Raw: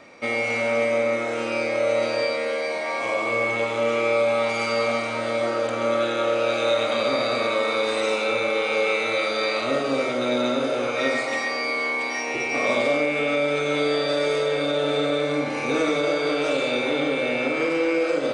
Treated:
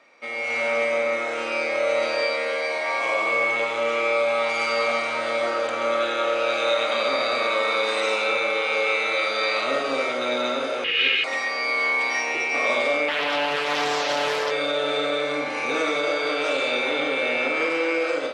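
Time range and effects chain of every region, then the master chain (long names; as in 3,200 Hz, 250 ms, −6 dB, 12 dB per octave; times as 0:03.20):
0:10.84–0:11.24: lower of the sound and its delayed copy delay 2.4 ms + low-pass with resonance 2,900 Hz, resonance Q 6.5 + flat-topped bell 860 Hz −14.5 dB 1.3 octaves
0:13.08–0:14.51: high-pass filter 240 Hz 6 dB per octave + highs frequency-modulated by the lows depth 0.53 ms
whole clip: automatic gain control gain up to 11.5 dB; high-pass filter 960 Hz 6 dB per octave; high-shelf EQ 5,500 Hz −8.5 dB; level −4.5 dB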